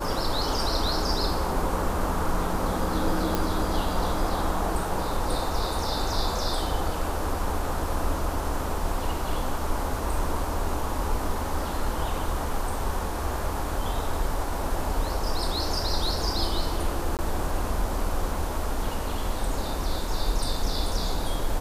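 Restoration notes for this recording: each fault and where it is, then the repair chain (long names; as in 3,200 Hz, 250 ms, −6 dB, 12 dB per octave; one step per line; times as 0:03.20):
0:03.35: click
0:17.17–0:17.19: drop-out 18 ms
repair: click removal
repair the gap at 0:17.17, 18 ms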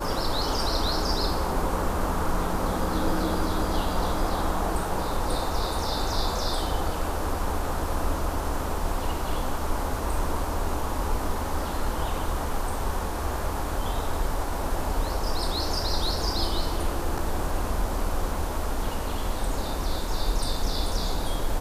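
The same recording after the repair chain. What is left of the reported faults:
none of them is left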